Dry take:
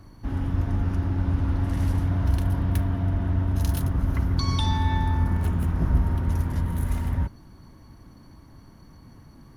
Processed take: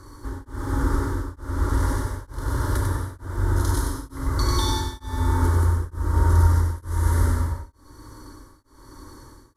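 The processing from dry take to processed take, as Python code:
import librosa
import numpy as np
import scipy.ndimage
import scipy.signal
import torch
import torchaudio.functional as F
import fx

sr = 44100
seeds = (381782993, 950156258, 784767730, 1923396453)

p1 = fx.cvsd(x, sr, bps=64000)
p2 = fx.low_shelf(p1, sr, hz=220.0, db=-7.0)
p3 = fx.rider(p2, sr, range_db=10, speed_s=0.5)
p4 = p2 + (p3 * 10.0 ** (1.0 / 20.0))
p5 = fx.fixed_phaser(p4, sr, hz=700.0, stages=6)
p6 = p5 + fx.echo_single(p5, sr, ms=96, db=-4.5, dry=0)
p7 = fx.rev_gated(p6, sr, seeds[0], gate_ms=410, shape='flat', drr_db=-3.0)
y = p7 * np.abs(np.cos(np.pi * 1.1 * np.arange(len(p7)) / sr))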